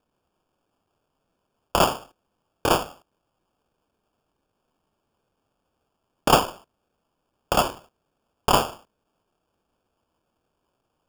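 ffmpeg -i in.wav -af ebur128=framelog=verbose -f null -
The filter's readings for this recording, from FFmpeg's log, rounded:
Integrated loudness:
  I:         -23.5 LUFS
  Threshold: -35.0 LUFS
Loudness range:
  LRA:         6.6 LU
  Threshold: -48.6 LUFS
  LRA low:   -32.4 LUFS
  LRA high:  -25.8 LUFS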